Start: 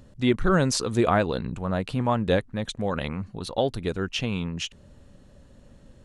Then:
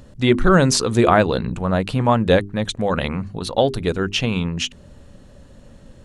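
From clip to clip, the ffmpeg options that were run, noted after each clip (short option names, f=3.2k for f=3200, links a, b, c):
-af "bandreject=f=50:t=h:w=6,bandreject=f=100:t=h:w=6,bandreject=f=150:t=h:w=6,bandreject=f=200:t=h:w=6,bandreject=f=250:t=h:w=6,bandreject=f=300:t=h:w=6,bandreject=f=350:t=h:w=6,bandreject=f=400:t=h:w=6,volume=7.5dB"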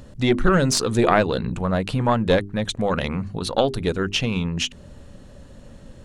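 -filter_complex "[0:a]asplit=2[a][b];[b]acompressor=threshold=-24dB:ratio=6,volume=0.5dB[c];[a][c]amix=inputs=2:normalize=0,aeval=exprs='1.26*(cos(1*acos(clip(val(0)/1.26,-1,1)))-cos(1*PI/2))+0.355*(cos(2*acos(clip(val(0)/1.26,-1,1)))-cos(2*PI/2))':c=same,volume=-5dB"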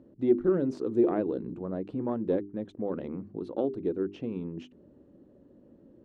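-af "bandpass=f=330:t=q:w=3.5:csg=0"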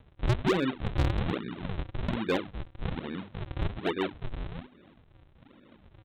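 -af "aresample=8000,acrusher=samples=21:mix=1:aa=0.000001:lfo=1:lforange=33.6:lforate=1.2,aresample=44100,asoftclip=type=hard:threshold=-20.5dB"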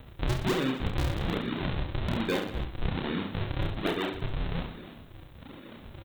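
-af "acompressor=threshold=-36dB:ratio=6,aemphasis=mode=production:type=50fm,aecho=1:1:30|69|119.7|185.6|271.3:0.631|0.398|0.251|0.158|0.1,volume=8dB"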